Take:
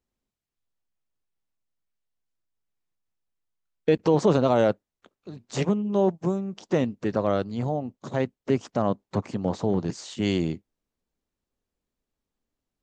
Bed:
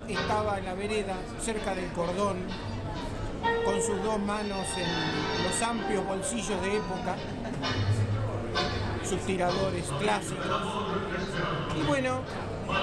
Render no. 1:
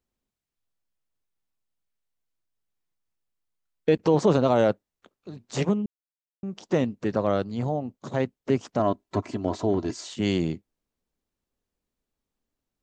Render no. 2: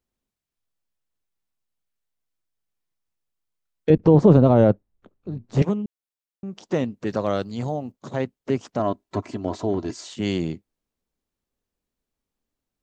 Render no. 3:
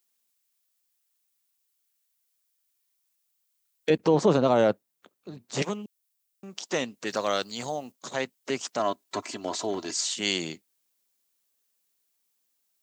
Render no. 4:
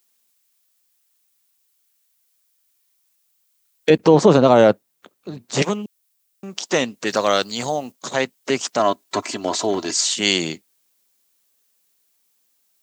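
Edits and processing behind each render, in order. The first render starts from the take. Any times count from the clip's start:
5.86–6.43 s: mute; 8.79–10.08 s: comb 3 ms
3.90–5.62 s: tilt EQ -4 dB/octave; 7.07–7.92 s: treble shelf 3.9 kHz +10 dB
high-pass 120 Hz; tilt EQ +4.5 dB/octave
trim +9 dB; peak limiter -1 dBFS, peak gain reduction 1 dB

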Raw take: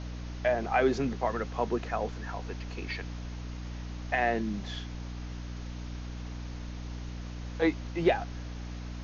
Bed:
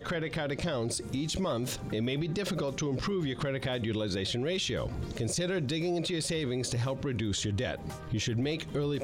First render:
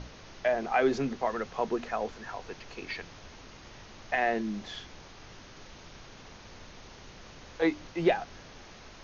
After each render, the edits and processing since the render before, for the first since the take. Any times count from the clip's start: hum notches 60/120/180/240/300 Hz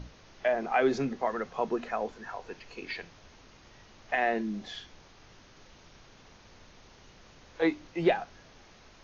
noise print and reduce 6 dB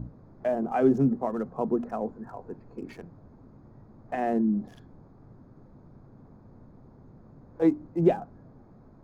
local Wiener filter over 15 samples; ten-band graphic EQ 125 Hz +10 dB, 250 Hz +8 dB, 2 kHz -10 dB, 4 kHz -12 dB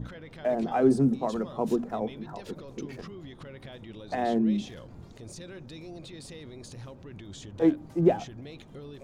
add bed -13 dB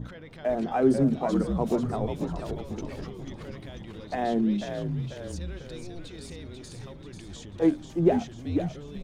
frequency-shifting echo 491 ms, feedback 55%, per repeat -74 Hz, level -6 dB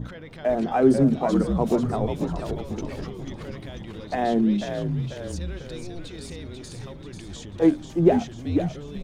trim +4 dB

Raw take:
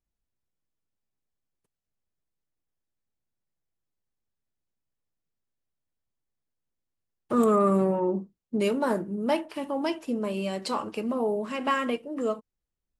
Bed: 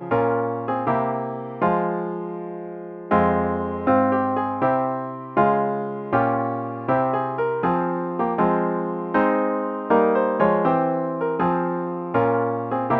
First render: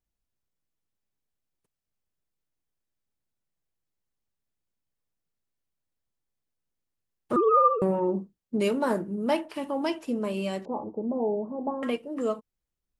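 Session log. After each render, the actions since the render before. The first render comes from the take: 7.36–7.82 s: formants replaced by sine waves; 10.65–11.83 s: elliptic low-pass 870 Hz, stop band 60 dB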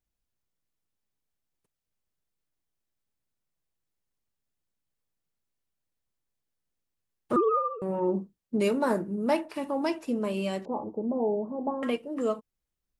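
7.37–8.08 s: dip -10.5 dB, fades 0.27 s; 8.62–10.08 s: band-stop 3.1 kHz, Q 8.1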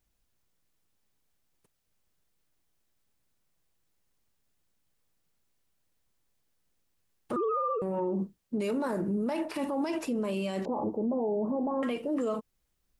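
in parallel at -1.5 dB: compressor with a negative ratio -35 dBFS, ratio -1; on the sum: peak limiter -23.5 dBFS, peak gain reduction 10.5 dB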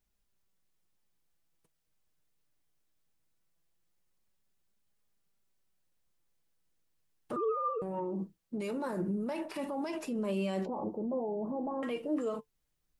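flange 0.2 Hz, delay 4.8 ms, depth 2 ms, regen +62%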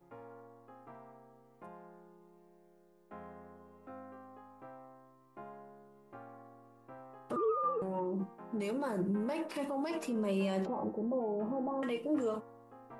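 add bed -31.5 dB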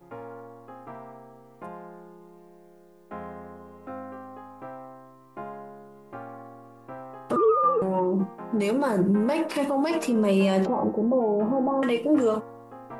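trim +11.5 dB

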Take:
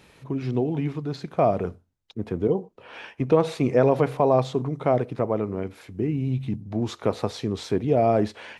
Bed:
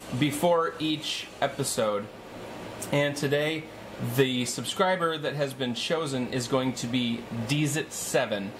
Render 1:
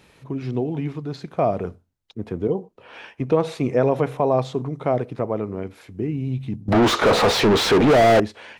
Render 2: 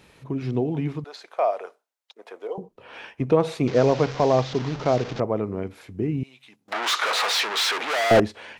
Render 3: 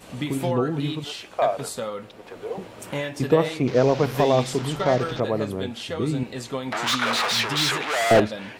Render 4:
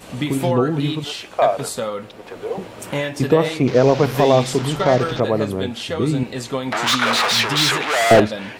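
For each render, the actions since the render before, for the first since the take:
3.66–4.38 s: band-stop 4.6 kHz, Q 8; 6.68–8.20 s: overdrive pedal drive 40 dB, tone 1.9 kHz, clips at -7.5 dBFS
1.04–2.58 s: high-pass 560 Hz 24 dB/octave; 3.67–5.20 s: one-bit delta coder 32 kbps, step -28.5 dBFS; 6.23–8.11 s: high-pass 1.2 kHz
add bed -4 dB
trim +5.5 dB; peak limiter -3 dBFS, peak gain reduction 3 dB

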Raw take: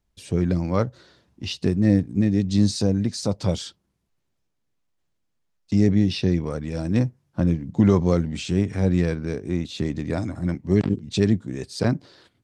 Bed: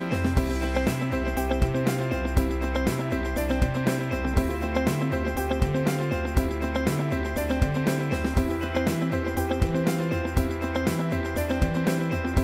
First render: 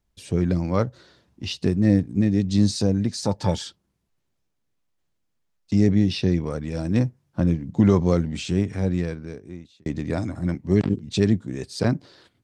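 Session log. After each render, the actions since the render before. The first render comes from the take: 3.22–3.64 s: small resonant body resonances 880/1700 Hz, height 14 dB; 8.48–9.86 s: fade out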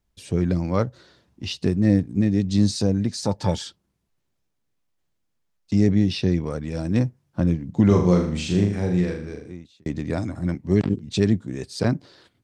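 7.87–9.52 s: flutter echo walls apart 6.7 m, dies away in 0.54 s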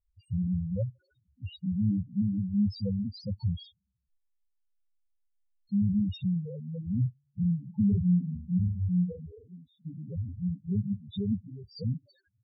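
loudest bins only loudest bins 2; static phaser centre 1.7 kHz, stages 8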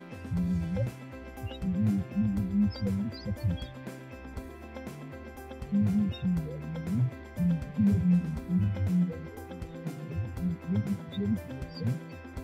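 add bed -17 dB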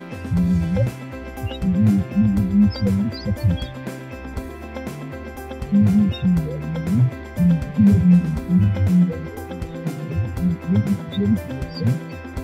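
trim +11 dB

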